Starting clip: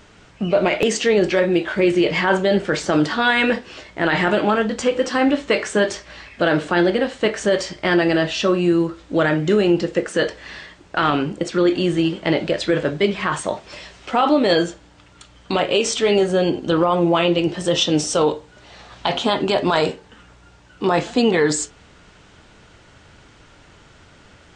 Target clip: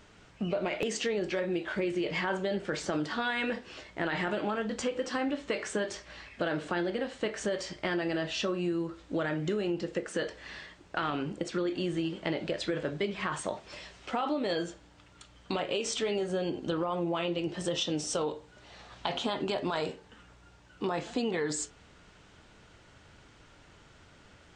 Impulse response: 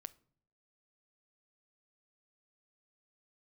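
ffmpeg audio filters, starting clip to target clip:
-af "acompressor=threshold=-20dB:ratio=4,volume=-8.5dB"

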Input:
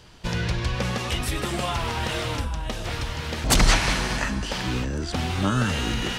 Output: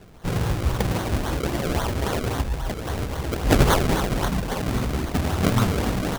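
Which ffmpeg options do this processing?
ffmpeg -i in.wav -filter_complex "[0:a]asplit=2[link_01][link_02];[link_02]asetrate=37084,aresample=44100,atempo=1.18921,volume=-1dB[link_03];[link_01][link_03]amix=inputs=2:normalize=0,acrusher=samples=34:mix=1:aa=0.000001:lfo=1:lforange=34:lforate=3.7" out.wav

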